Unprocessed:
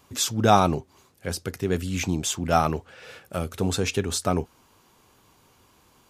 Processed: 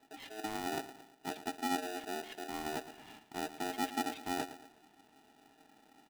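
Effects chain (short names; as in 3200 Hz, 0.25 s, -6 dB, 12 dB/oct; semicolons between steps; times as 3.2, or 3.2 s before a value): HPF 53 Hz; reverse; compressor 8:1, threshold -32 dBFS, peak gain reduction 20 dB; reverse; formant shift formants -5 st; added harmonics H 2 -12 dB, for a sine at -22 dBFS; vocal tract filter i; feedback echo 0.113 s, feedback 43%, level -13.5 dB; polarity switched at an audio rate 540 Hz; gain +6 dB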